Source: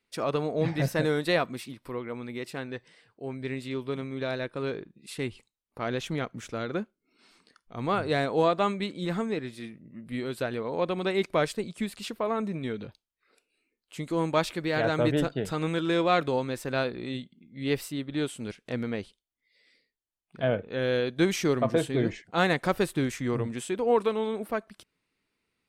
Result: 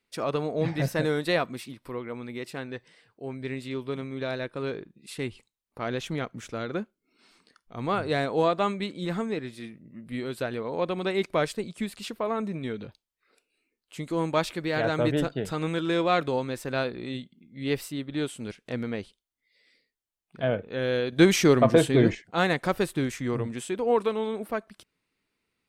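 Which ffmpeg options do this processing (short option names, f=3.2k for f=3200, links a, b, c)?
-filter_complex "[0:a]asettb=1/sr,asplit=3[a][b][c];[a]atrim=end=21.124[d];[b]atrim=start=21.12:end=22.15,asetpts=PTS-STARTPTS,afade=t=in:d=0.004:c=qsin,afade=t=out:st=1.026:d=0.004:c=qsin,acontrast=66[e];[c]atrim=start=22.146[f];[d][e]acrossfade=d=0.004:c1=hsin:c2=qsin[g];[g][f]acrossfade=d=0.004:c1=qsin:c2=hsin"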